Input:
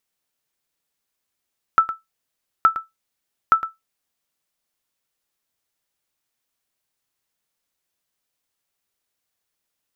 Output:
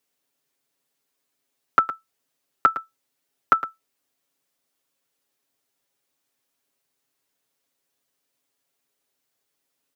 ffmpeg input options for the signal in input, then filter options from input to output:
-f lavfi -i "aevalsrc='0.562*(sin(2*PI*1320*mod(t,0.87))*exp(-6.91*mod(t,0.87)/0.17)+0.224*sin(2*PI*1320*max(mod(t,0.87)-0.11,0))*exp(-6.91*max(mod(t,0.87)-0.11,0)/0.17))':d=2.61:s=44100"
-filter_complex "[0:a]acrossover=split=190|530[a][b][c];[b]acontrast=67[d];[a][d][c]amix=inputs=3:normalize=0,lowshelf=f=85:g=-11.5,aecho=1:1:7.3:0.75"

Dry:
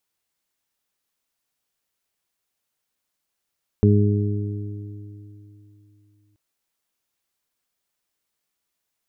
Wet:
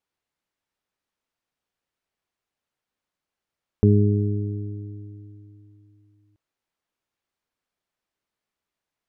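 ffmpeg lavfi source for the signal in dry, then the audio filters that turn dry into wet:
-f lavfi -i "aevalsrc='0.224*pow(10,-3*t/3.13)*sin(2*PI*103*t)+0.158*pow(10,-3*t/2.11)*sin(2*PI*206*t)+0.0708*pow(10,-3*t/3.46)*sin(2*PI*309*t)+0.106*pow(10,-3*t/2.19)*sin(2*PI*412*t)':d=2.53:s=44100"
-af "aemphasis=mode=reproduction:type=75kf"

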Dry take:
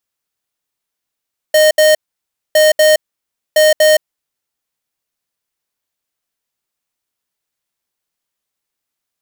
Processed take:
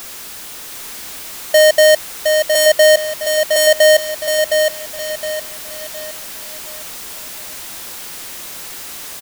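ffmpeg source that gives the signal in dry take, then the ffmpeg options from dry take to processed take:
-f lavfi -i "aevalsrc='0.376*(2*lt(mod(617*t,1),0.5)-1)*clip(min(mod(mod(t,1.01),0.24),0.17-mod(mod(t,1.01),0.24))/0.005,0,1)*lt(mod(t,1.01),0.48)':d=3.03:s=44100"
-af "aeval=exprs='val(0)+0.5*0.0531*sgn(val(0))':c=same,equalizer=f=120:w=1.8:g=-4.5,aecho=1:1:714|1428|2142|2856|3570:0.562|0.208|0.077|0.0285|0.0105"

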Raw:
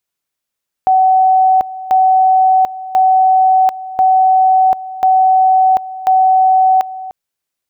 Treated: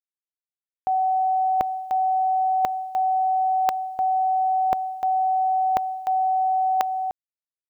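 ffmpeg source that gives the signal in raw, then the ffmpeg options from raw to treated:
-f lavfi -i "aevalsrc='pow(10,(-6.5-16.5*gte(mod(t,1.04),0.74))/20)*sin(2*PI*754*t)':d=6.24:s=44100"
-af "areverse,acompressor=threshold=-20dB:ratio=12,areverse,acrusher=bits=10:mix=0:aa=0.000001"

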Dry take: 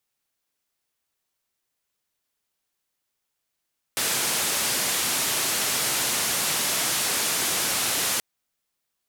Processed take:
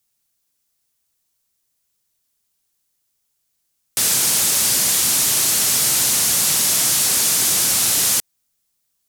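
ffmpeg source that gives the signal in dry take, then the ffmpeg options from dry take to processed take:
-f lavfi -i "anoisesrc=c=white:d=4.23:r=44100:seed=1,highpass=f=110,lowpass=f=12000,volume=-17.5dB"
-af "bass=f=250:g=8,treble=f=4k:g=10"

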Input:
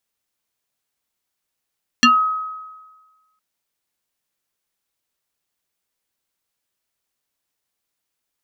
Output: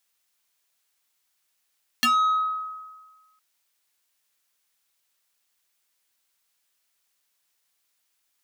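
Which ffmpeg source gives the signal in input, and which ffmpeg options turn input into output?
-f lavfi -i "aevalsrc='0.447*pow(10,-3*t/1.36)*sin(2*PI*1270*t+3.1*pow(10,-3*t/0.19)*sin(2*PI*1.19*1270*t))':d=1.36:s=44100"
-af "tiltshelf=f=680:g=-6.5,acompressor=threshold=-15dB:ratio=2,asoftclip=type=tanh:threshold=-18.5dB"

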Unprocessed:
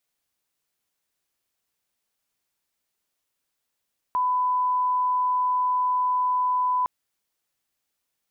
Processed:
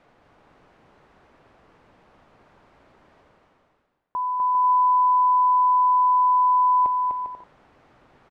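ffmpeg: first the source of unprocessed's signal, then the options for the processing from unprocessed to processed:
-f lavfi -i "sine=f=1000:d=2.71:r=44100,volume=-1.94dB"
-af "lowpass=1.1k,areverse,acompressor=mode=upward:threshold=-32dB:ratio=2.5,areverse,aecho=1:1:250|400|490|544|576.4:0.631|0.398|0.251|0.158|0.1"

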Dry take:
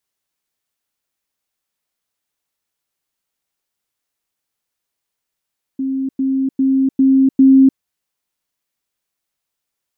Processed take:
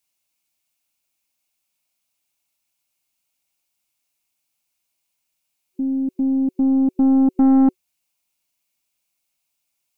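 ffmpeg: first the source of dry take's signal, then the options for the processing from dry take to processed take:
-f lavfi -i "aevalsrc='pow(10,(-17+3*floor(t/0.4))/20)*sin(2*PI*267*t)*clip(min(mod(t,0.4),0.3-mod(t,0.4))/0.005,0,1)':d=2:s=44100"
-af "superequalizer=7b=0.282:10b=0.708:11b=0.562:12b=1.78,aeval=exprs='(tanh(3.16*val(0)+0.2)-tanh(0.2))/3.16':c=same,bass=f=250:g=-1,treble=f=4k:g=5"

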